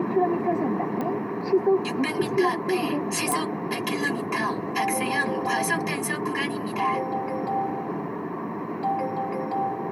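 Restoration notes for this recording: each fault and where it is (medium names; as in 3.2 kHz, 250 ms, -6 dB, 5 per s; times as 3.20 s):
1.01 s: pop -18 dBFS
3.32 s: pop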